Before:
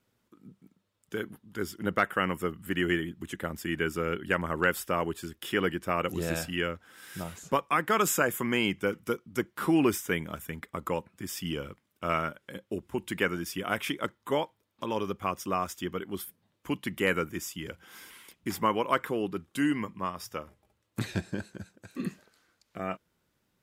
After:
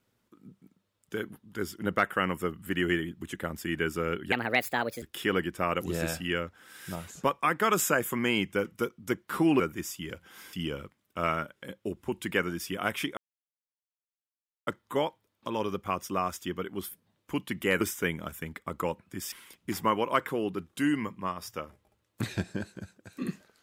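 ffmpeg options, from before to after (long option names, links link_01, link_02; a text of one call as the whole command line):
ffmpeg -i in.wav -filter_complex "[0:a]asplit=8[link_01][link_02][link_03][link_04][link_05][link_06][link_07][link_08];[link_01]atrim=end=4.324[link_09];[link_02]atrim=start=4.32:end=5.3,asetpts=PTS-STARTPTS,asetrate=61740,aresample=44100,atrim=end_sample=30870,asetpts=PTS-STARTPTS[link_10];[link_03]atrim=start=5.296:end=9.882[link_11];[link_04]atrim=start=17.168:end=18.102[link_12];[link_05]atrim=start=11.388:end=14.03,asetpts=PTS-STARTPTS,afade=type=out:start_time=2.638:duration=0.004:curve=hsin,apad=pad_dur=1.5[link_13];[link_06]atrim=start=14.03:end=17.172,asetpts=PTS-STARTPTS,afade=type=in:duration=0.004:curve=hsin[link_14];[link_07]atrim=start=9.878:end=11.392[link_15];[link_08]atrim=start=18.098[link_16];[link_09][link_10]acrossfade=duration=0.004:curve1=hsin:curve2=hsin[link_17];[link_17][link_11]acrossfade=duration=0.004:curve1=hsin:curve2=hsin[link_18];[link_18][link_12]acrossfade=duration=0.004:curve1=hsin:curve2=hsin[link_19];[link_13][link_14]concat=n=2:v=0:a=1[link_20];[link_19][link_20]acrossfade=duration=0.004:curve1=hsin:curve2=hsin[link_21];[link_21][link_15]acrossfade=duration=0.004:curve1=hsin:curve2=hsin[link_22];[link_22][link_16]acrossfade=duration=0.004:curve1=hsin:curve2=hsin" out.wav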